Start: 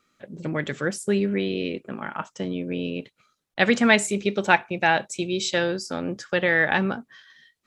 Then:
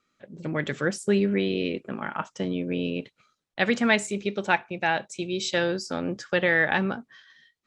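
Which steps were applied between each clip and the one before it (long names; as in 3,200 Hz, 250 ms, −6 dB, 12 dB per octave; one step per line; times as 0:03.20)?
low-pass filter 8,000 Hz 12 dB per octave
automatic gain control gain up to 6 dB
level −5.5 dB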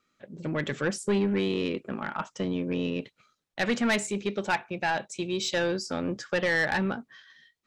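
soft clipping −19 dBFS, distortion −12 dB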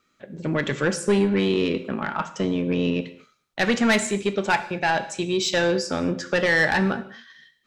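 reverb whose tail is shaped and stops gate 260 ms falling, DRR 10 dB
level +5.5 dB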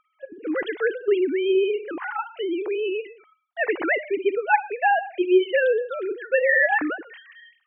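three sine waves on the formant tracks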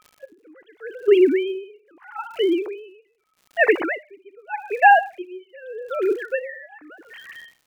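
surface crackle 170 per second −42 dBFS
tremolo with a sine in dB 0.82 Hz, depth 32 dB
level +8 dB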